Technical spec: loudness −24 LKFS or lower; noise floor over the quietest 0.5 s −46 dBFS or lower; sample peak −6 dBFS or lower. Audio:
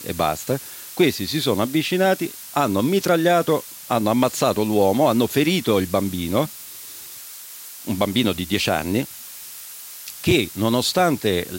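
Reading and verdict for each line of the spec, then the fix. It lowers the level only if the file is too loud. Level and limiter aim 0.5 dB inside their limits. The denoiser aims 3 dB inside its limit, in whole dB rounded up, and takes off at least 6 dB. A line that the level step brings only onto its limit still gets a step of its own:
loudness −20.5 LKFS: out of spec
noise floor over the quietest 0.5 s −38 dBFS: out of spec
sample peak −5.5 dBFS: out of spec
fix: broadband denoise 7 dB, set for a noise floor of −38 dBFS
level −4 dB

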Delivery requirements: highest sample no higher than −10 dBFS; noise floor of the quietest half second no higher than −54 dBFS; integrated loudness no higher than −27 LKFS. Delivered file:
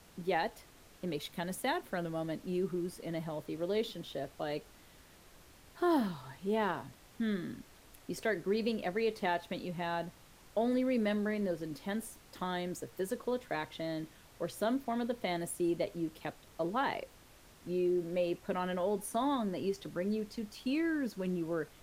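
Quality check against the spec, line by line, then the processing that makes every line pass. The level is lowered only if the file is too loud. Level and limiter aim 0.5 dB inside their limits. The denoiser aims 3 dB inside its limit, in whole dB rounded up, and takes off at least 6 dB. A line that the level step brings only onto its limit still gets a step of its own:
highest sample −19.5 dBFS: in spec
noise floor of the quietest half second −59 dBFS: in spec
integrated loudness −36.0 LKFS: in spec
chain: no processing needed

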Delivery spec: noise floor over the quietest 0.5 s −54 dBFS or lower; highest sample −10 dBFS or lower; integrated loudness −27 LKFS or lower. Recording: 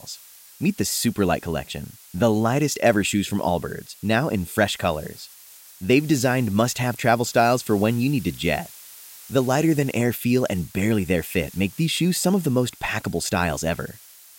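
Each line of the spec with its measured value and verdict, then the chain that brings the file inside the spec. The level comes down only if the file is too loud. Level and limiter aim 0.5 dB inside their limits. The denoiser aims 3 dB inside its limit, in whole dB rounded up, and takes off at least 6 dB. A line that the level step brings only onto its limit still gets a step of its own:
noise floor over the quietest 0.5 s −47 dBFS: out of spec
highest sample −5.5 dBFS: out of spec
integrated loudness −22.5 LKFS: out of spec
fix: broadband denoise 6 dB, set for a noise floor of −47 dBFS
level −5 dB

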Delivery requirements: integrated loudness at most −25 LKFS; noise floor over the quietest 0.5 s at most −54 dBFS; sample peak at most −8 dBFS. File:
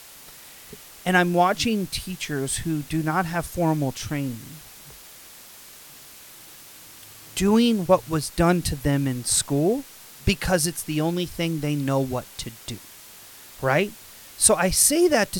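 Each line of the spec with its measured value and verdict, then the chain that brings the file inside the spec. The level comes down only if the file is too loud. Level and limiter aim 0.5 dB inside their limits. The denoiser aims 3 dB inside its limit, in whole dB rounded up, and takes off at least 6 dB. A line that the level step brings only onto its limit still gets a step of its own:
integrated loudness −22.5 LKFS: out of spec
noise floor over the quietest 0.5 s −45 dBFS: out of spec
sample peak −2.5 dBFS: out of spec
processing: broadband denoise 9 dB, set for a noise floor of −45 dBFS
level −3 dB
brickwall limiter −8.5 dBFS

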